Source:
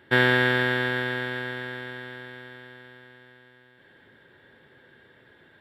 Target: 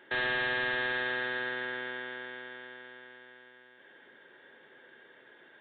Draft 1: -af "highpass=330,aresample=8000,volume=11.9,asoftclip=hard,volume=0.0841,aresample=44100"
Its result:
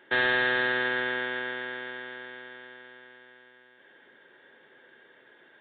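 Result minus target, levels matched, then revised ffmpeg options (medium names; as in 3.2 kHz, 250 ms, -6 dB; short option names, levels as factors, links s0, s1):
overload inside the chain: distortion -6 dB
-af "highpass=330,aresample=8000,volume=29.9,asoftclip=hard,volume=0.0335,aresample=44100"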